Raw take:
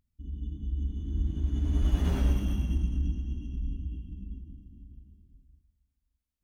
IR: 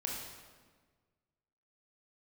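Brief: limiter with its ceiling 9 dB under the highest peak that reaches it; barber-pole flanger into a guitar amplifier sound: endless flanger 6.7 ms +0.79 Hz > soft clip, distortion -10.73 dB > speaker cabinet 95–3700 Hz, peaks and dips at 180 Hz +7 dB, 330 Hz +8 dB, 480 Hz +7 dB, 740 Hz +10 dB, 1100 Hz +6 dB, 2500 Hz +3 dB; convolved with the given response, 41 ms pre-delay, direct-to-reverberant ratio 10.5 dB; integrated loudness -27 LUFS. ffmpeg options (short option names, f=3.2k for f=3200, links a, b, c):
-filter_complex "[0:a]alimiter=limit=-22.5dB:level=0:latency=1,asplit=2[a][b];[1:a]atrim=start_sample=2205,adelay=41[c];[b][c]afir=irnorm=-1:irlink=0,volume=-12.5dB[d];[a][d]amix=inputs=2:normalize=0,asplit=2[e][f];[f]adelay=6.7,afreqshift=0.79[g];[e][g]amix=inputs=2:normalize=1,asoftclip=threshold=-32.5dB,highpass=95,equalizer=f=180:t=q:w=4:g=7,equalizer=f=330:t=q:w=4:g=8,equalizer=f=480:t=q:w=4:g=7,equalizer=f=740:t=q:w=4:g=10,equalizer=f=1.1k:t=q:w=4:g=6,equalizer=f=2.5k:t=q:w=4:g=3,lowpass=f=3.7k:w=0.5412,lowpass=f=3.7k:w=1.3066,volume=15dB"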